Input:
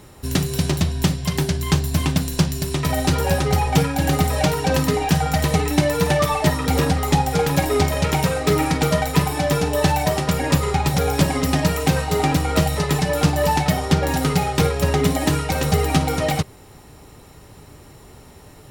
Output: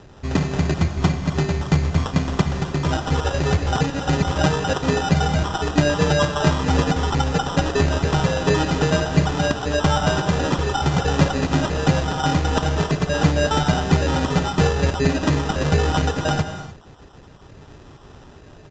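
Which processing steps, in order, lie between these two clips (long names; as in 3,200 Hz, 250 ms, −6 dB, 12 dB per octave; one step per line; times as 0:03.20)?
time-frequency cells dropped at random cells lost 24%
decimation without filtering 20×
on a send at −8 dB: convolution reverb, pre-delay 3 ms
on the sum: downsampling to 16,000 Hz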